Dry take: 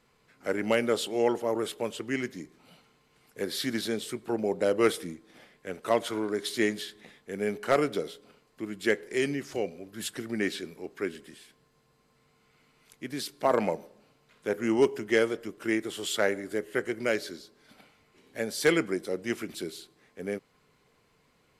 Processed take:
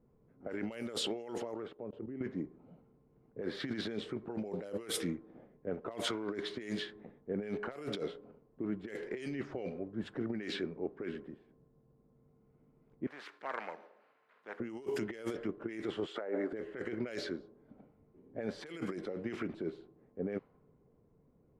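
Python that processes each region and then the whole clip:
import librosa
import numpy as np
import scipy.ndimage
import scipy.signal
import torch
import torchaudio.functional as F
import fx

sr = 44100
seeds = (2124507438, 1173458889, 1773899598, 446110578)

y = fx.chain(x, sr, fx.level_steps(step_db=22),
    fx.lowpass(hz=6300.0, slope=12), at=(1.54, 2.21))
y = fx.chain(y, sr, fx.highpass_res(hz=1800.0, q=2.2),
    fx.spectral_comp(ratio=2.0), at=(13.07, 14.6))
y = fx.chain(y, sr, fx.low_shelf(hz=420.0, db=-3.0),
    fx.over_compress(threshold_db=-36.0, ratio=-1.0),
    fx.highpass(hz=310.0, slope=12), at=(16.06, 16.53))
y = fx.env_lowpass(y, sr, base_hz=410.0, full_db=-21.0)
y = fx.over_compress(y, sr, threshold_db=-36.0, ratio=-1.0)
y = y * librosa.db_to_amplitude(-3.0)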